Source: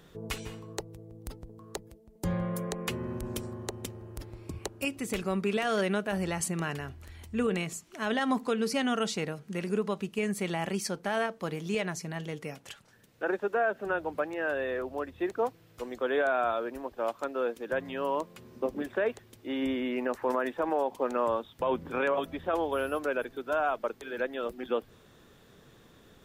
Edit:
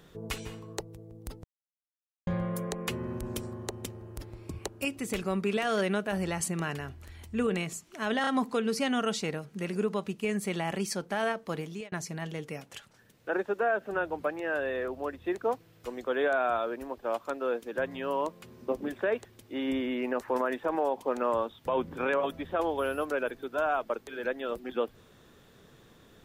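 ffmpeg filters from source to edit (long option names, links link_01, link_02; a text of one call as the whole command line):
ffmpeg -i in.wav -filter_complex "[0:a]asplit=6[link_01][link_02][link_03][link_04][link_05][link_06];[link_01]atrim=end=1.44,asetpts=PTS-STARTPTS,afade=type=out:start_time=1.436:duration=0.004:curve=hsin[link_07];[link_02]atrim=start=1.44:end=2.27,asetpts=PTS-STARTPTS,volume=0[link_08];[link_03]atrim=start=2.27:end=8.242,asetpts=PTS-STARTPTS,afade=type=in:duration=0.004:curve=hsin[link_09];[link_04]atrim=start=8.208:end=8.242[link_10];[link_05]atrim=start=8.208:end=11.86,asetpts=PTS-STARTPTS,afade=type=out:start_time=3.322:duration=0.33[link_11];[link_06]atrim=start=11.86,asetpts=PTS-STARTPTS,afade=type=in:duration=0.004:curve=hsin[link_12];[link_07][link_08][link_09]concat=n=3:v=0:a=1[link_13];[link_13][link_10]acrossfade=duration=0.004:curve1=hsin:curve2=hsin[link_14];[link_11][link_12]concat=n=2:v=0:a=1[link_15];[link_14][link_15]acrossfade=duration=0.004:curve1=hsin:curve2=hsin" out.wav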